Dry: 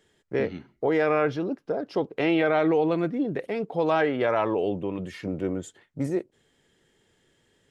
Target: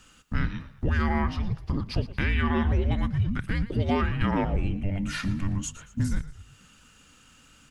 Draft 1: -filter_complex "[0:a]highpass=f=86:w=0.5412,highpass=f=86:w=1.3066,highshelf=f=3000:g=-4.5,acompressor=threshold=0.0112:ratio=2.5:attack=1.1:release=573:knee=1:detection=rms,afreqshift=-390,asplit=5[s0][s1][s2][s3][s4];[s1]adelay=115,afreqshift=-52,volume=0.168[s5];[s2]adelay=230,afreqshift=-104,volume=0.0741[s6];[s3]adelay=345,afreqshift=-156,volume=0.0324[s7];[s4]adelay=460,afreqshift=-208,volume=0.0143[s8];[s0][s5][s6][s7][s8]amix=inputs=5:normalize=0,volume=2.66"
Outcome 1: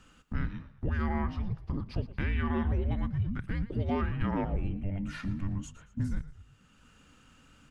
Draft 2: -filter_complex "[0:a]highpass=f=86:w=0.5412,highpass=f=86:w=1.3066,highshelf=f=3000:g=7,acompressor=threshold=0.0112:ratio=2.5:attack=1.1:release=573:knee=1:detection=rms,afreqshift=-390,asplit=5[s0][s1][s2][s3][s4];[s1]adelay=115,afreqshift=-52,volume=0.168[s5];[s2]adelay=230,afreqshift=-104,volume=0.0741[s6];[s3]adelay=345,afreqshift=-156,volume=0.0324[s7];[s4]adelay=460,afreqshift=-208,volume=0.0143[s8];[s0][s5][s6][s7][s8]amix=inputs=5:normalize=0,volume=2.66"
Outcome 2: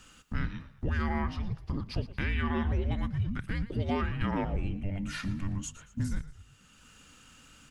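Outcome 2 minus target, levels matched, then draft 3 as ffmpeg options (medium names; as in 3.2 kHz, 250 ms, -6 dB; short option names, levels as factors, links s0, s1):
compression: peak gain reduction +5.5 dB
-filter_complex "[0:a]highpass=f=86:w=0.5412,highpass=f=86:w=1.3066,highshelf=f=3000:g=7,acompressor=threshold=0.0316:ratio=2.5:attack=1.1:release=573:knee=1:detection=rms,afreqshift=-390,asplit=5[s0][s1][s2][s3][s4];[s1]adelay=115,afreqshift=-52,volume=0.168[s5];[s2]adelay=230,afreqshift=-104,volume=0.0741[s6];[s3]adelay=345,afreqshift=-156,volume=0.0324[s7];[s4]adelay=460,afreqshift=-208,volume=0.0143[s8];[s0][s5][s6][s7][s8]amix=inputs=5:normalize=0,volume=2.66"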